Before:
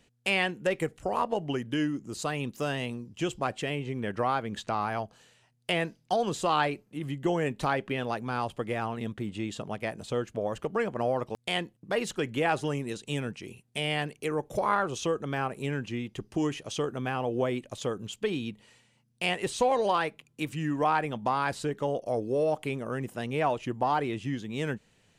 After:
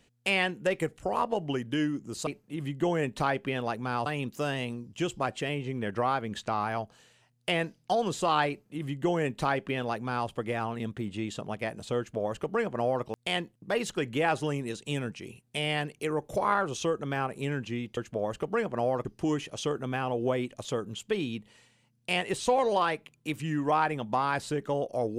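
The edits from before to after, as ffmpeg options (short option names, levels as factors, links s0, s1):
-filter_complex "[0:a]asplit=5[s0][s1][s2][s3][s4];[s0]atrim=end=2.272[s5];[s1]atrim=start=6.698:end=8.492[s6];[s2]atrim=start=2.268:end=16.182[s7];[s3]atrim=start=10.188:end=11.272[s8];[s4]atrim=start=16.178[s9];[s5][s6]acrossfade=d=0.004:c1=hsin:c2=hsin[s10];[s10][s7]acrossfade=d=0.004:c1=hsin:c2=hsin[s11];[s11][s8]acrossfade=d=0.004:c1=hsin:c2=hsin[s12];[s12][s9]acrossfade=d=0.004:c1=hsin:c2=hsin"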